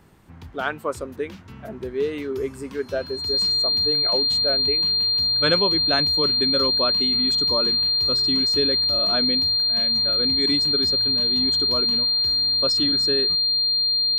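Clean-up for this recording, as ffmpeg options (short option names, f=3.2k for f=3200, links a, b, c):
-af "bandreject=f=4.2k:w=30"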